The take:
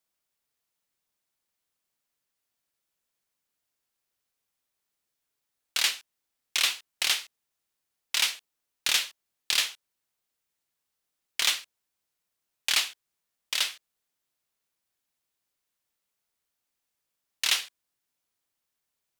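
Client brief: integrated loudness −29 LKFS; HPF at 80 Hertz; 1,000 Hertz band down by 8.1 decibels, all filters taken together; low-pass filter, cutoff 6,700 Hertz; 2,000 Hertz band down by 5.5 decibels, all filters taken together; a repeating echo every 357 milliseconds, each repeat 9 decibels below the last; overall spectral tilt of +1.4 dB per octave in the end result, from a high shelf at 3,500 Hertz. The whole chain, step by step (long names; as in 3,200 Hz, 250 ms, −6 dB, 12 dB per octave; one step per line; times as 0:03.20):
high-pass filter 80 Hz
low-pass filter 6,700 Hz
parametric band 1,000 Hz −8.5 dB
parametric band 2,000 Hz −8.5 dB
high-shelf EQ 3,500 Hz +7 dB
repeating echo 357 ms, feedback 35%, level −9 dB
level −1 dB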